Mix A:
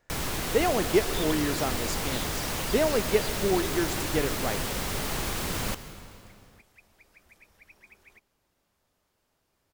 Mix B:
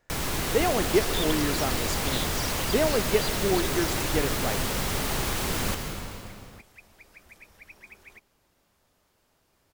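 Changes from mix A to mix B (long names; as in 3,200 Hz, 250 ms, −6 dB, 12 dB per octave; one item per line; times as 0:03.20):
first sound: send +9.5 dB
second sound +6.0 dB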